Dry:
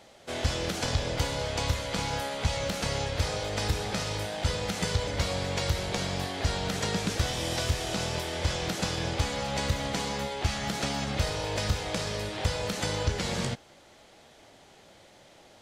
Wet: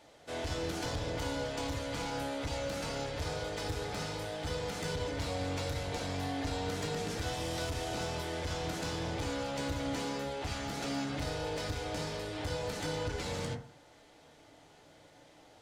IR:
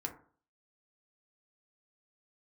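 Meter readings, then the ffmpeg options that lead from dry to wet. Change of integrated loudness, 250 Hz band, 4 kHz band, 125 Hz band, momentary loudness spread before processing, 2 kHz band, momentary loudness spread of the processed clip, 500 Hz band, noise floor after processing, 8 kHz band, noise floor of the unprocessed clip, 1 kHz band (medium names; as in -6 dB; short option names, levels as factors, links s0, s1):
-6.5 dB, -3.5 dB, -8.0 dB, -8.0 dB, 2 LU, -6.5 dB, 2 LU, -4.0 dB, -59 dBFS, -8.5 dB, -56 dBFS, -5.0 dB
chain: -filter_complex "[0:a]asoftclip=type=tanh:threshold=0.0473[s0];[1:a]atrim=start_sample=2205[s1];[s0][s1]afir=irnorm=-1:irlink=0,volume=0.631"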